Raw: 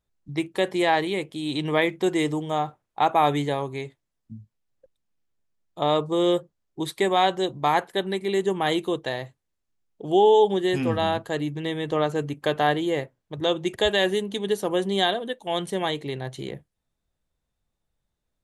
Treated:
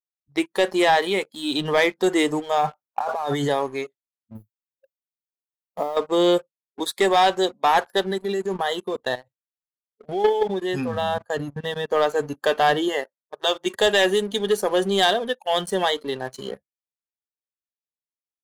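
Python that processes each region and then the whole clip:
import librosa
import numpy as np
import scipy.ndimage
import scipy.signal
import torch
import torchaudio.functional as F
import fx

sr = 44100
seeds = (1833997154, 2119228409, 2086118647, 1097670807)

y = fx.chain(x, sr, fx.notch(hz=1300.0, q=20.0),
    fx.over_compress(threshold_db=-28.0, ratio=-1.0), at=(2.61, 3.5))
y = fx.chain(y, sr, fx.peak_eq(hz=2700.0, db=-12.0, octaves=2.4),
    fx.over_compress(threshold_db=-28.0, ratio=-0.5),
    fx.mod_noise(seeds[0], snr_db=31), at=(4.35, 5.97))
y = fx.chain(y, sr, fx.low_shelf(hz=150.0, db=9.5),
    fx.level_steps(step_db=14), at=(8.11, 11.91))
y = fx.chain(y, sr, fx.highpass(hz=360.0, slope=6),
    fx.notch(hz=500.0, q=12.0), at=(12.88, 13.66))
y = fx.highpass(y, sr, hz=280.0, slope=6)
y = fx.noise_reduce_blind(y, sr, reduce_db=21)
y = fx.leveller(y, sr, passes=2)
y = y * librosa.db_to_amplitude(-1.0)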